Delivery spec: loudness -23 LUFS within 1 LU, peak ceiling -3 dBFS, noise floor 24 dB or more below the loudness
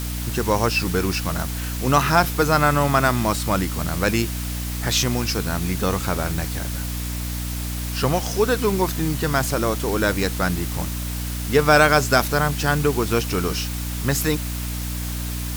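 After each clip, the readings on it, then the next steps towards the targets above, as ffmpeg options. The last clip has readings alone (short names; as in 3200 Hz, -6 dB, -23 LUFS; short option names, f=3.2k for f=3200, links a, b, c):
hum 60 Hz; harmonics up to 300 Hz; hum level -25 dBFS; noise floor -27 dBFS; noise floor target -46 dBFS; loudness -21.5 LUFS; peak -3.0 dBFS; loudness target -23.0 LUFS
-> -af "bandreject=f=60:t=h:w=4,bandreject=f=120:t=h:w=4,bandreject=f=180:t=h:w=4,bandreject=f=240:t=h:w=4,bandreject=f=300:t=h:w=4"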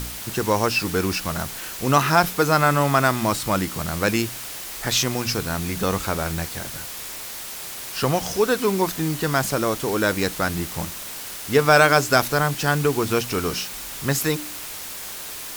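hum none; noise floor -34 dBFS; noise floor target -47 dBFS
-> -af "afftdn=nr=13:nf=-34"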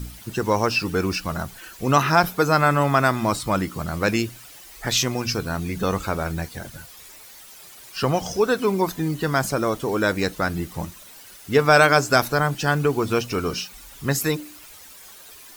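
noise floor -45 dBFS; noise floor target -46 dBFS
-> -af "afftdn=nr=6:nf=-45"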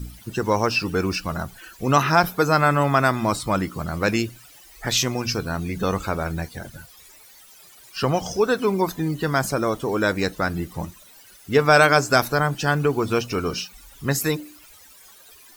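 noise floor -49 dBFS; loudness -22.0 LUFS; peak -3.0 dBFS; loudness target -23.0 LUFS
-> -af "volume=-1dB"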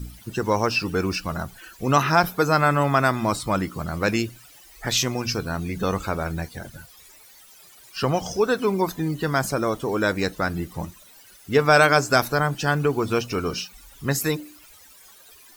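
loudness -23.0 LUFS; peak -4.0 dBFS; noise floor -50 dBFS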